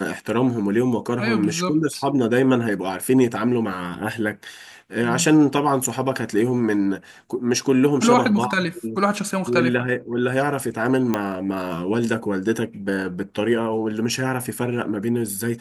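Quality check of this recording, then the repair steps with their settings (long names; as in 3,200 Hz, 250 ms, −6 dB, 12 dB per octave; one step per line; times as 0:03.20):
0:11.14: click −8 dBFS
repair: click removal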